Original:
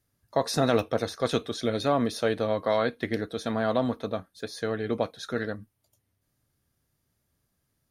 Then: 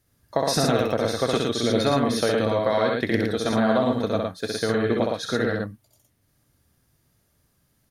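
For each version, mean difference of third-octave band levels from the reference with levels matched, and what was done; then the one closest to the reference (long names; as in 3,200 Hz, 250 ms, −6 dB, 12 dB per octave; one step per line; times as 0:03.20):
6.0 dB: downward compressor, threshold −25 dBFS, peak gain reduction 8 dB
loudspeakers that aren't time-aligned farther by 22 metres −3 dB, 39 metres −3 dB
level +6 dB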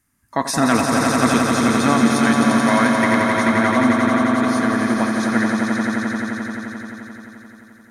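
10.5 dB: octave-band graphic EQ 125/250/500/1,000/2,000/4,000/8,000 Hz −4/+9/−12/+6/+8/−7/+9 dB
on a send: echo that builds up and dies away 87 ms, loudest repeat 5, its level −6 dB
on the sum: level +5 dB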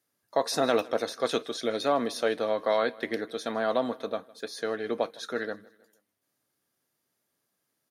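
3.5 dB: high-pass filter 300 Hz 12 dB per octave
repeating echo 157 ms, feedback 47%, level −23 dB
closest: third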